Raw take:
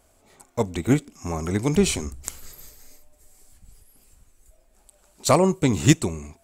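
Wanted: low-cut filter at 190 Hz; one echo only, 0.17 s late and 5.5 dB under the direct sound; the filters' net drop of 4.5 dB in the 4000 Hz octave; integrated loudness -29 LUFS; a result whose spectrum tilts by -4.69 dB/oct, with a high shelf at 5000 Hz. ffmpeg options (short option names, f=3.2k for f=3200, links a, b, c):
-af "highpass=190,equalizer=f=4k:t=o:g=-8,highshelf=f=5k:g=4.5,aecho=1:1:170:0.531,volume=-5.5dB"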